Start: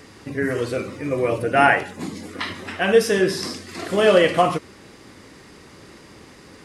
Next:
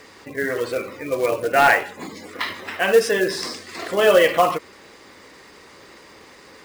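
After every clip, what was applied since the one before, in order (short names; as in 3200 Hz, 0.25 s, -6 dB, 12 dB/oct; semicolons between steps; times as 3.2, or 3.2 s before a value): spectral gate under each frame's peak -30 dB strong; graphic EQ 125/500/1000/2000/4000/8000 Hz -4/+7/+7/+7/+6/+7 dB; short-mantissa float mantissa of 2-bit; gain -7 dB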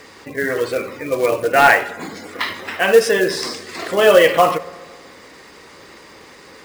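reverb RT60 1.7 s, pre-delay 3 ms, DRR 15.5 dB; gain +3.5 dB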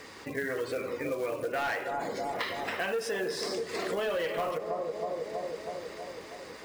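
analogue delay 0.321 s, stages 2048, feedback 63%, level -9.5 dB; soft clip -9 dBFS, distortion -12 dB; compressor 6:1, threshold -25 dBFS, peak gain reduction 13 dB; gain -5 dB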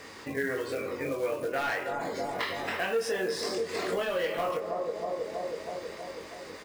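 doubler 22 ms -4.5 dB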